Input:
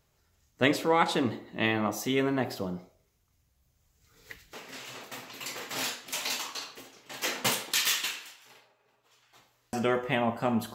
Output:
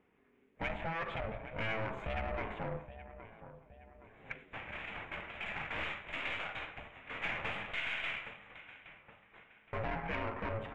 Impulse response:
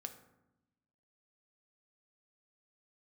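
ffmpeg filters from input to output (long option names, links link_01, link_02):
-filter_complex "[0:a]aeval=exprs='val(0)*sin(2*PI*330*n/s)':channel_layout=same,asuperstop=centerf=5000:order=8:qfactor=1.7,acompressor=threshold=-31dB:ratio=6,asplit=2[link_01][link_02];[link_02]adelay=819,lowpass=frequency=2700:poles=1,volume=-18dB,asplit=2[link_03][link_04];[link_04]adelay=819,lowpass=frequency=2700:poles=1,volume=0.47,asplit=2[link_05][link_06];[link_06]adelay=819,lowpass=frequency=2700:poles=1,volume=0.47,asplit=2[link_07][link_08];[link_08]adelay=819,lowpass=frequency=2700:poles=1,volume=0.47[link_09];[link_03][link_05][link_07][link_09]amix=inputs=4:normalize=0[link_10];[link_01][link_10]amix=inputs=2:normalize=0,aeval=exprs='(tanh(89.1*val(0)+0.5)-tanh(0.5))/89.1':channel_layout=same,equalizer=frequency=2300:width_type=o:width=1.1:gain=14.5,adynamicsmooth=sensitivity=0.5:basefreq=1600,highshelf=frequency=6400:gain=-6,volume=5dB"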